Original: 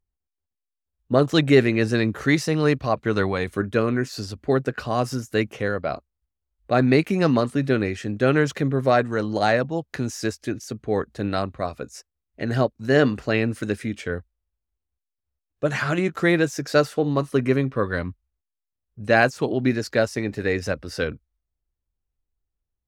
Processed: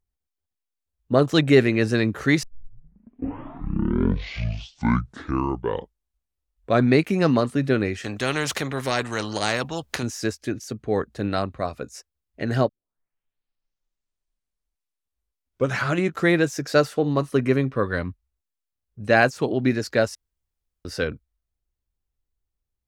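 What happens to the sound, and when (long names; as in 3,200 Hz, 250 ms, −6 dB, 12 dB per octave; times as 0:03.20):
0:02.43: tape start 4.56 s
0:08.04–0:10.03: every bin compressed towards the loudest bin 2 to 1
0:12.69: tape start 3.29 s
0:20.15–0:20.85: fill with room tone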